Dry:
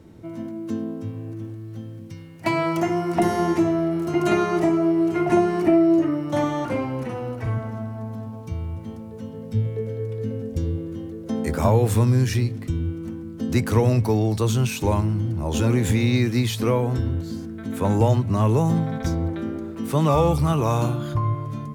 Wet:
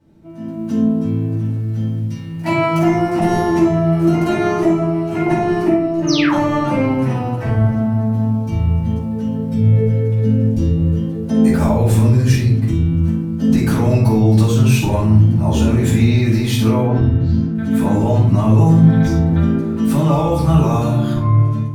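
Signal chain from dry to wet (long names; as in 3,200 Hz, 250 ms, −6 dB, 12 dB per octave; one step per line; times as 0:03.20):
brickwall limiter −18 dBFS, peak gain reduction 11 dB
automatic gain control gain up to 16 dB
0:06.07–0:06.33: sound drawn into the spectrogram fall 800–6,600 Hz −14 dBFS
0:16.81–0:17.55: high-frequency loss of the air 180 metres
rectangular room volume 510 cubic metres, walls furnished, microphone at 8.3 metres
level −17.5 dB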